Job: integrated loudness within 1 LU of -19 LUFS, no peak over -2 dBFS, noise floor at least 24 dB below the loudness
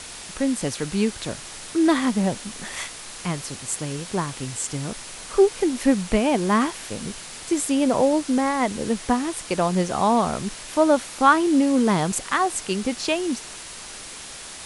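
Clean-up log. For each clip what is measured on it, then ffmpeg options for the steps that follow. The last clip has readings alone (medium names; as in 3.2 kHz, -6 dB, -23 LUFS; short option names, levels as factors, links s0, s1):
noise floor -38 dBFS; noise floor target -47 dBFS; loudness -23.0 LUFS; peak level -3.5 dBFS; loudness target -19.0 LUFS
-> -af "afftdn=nr=9:nf=-38"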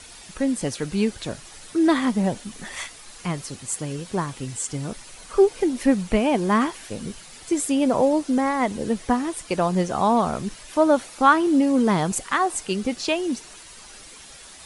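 noise floor -44 dBFS; noise floor target -47 dBFS
-> -af "afftdn=nr=6:nf=-44"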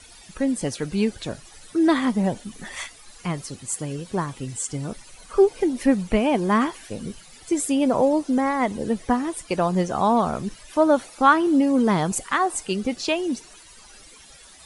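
noise floor -48 dBFS; loudness -23.0 LUFS; peak level -3.5 dBFS; loudness target -19.0 LUFS
-> -af "volume=1.58,alimiter=limit=0.794:level=0:latency=1"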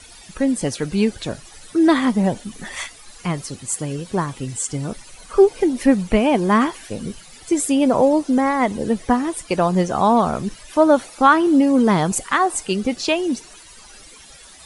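loudness -19.0 LUFS; peak level -2.0 dBFS; noise floor -44 dBFS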